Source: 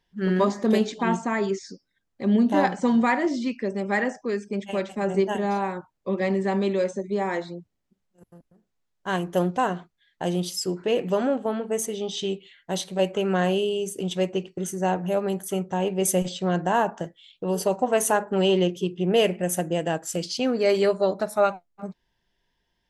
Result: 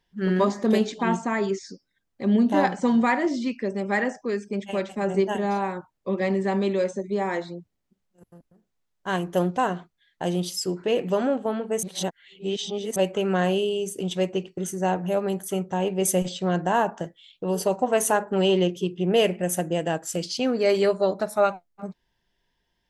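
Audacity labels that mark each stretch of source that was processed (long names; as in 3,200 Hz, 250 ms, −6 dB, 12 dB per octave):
11.830000	12.960000	reverse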